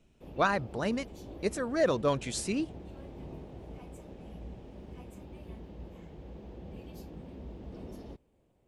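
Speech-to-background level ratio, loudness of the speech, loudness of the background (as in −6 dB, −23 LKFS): 16.0 dB, −31.0 LKFS, −47.0 LKFS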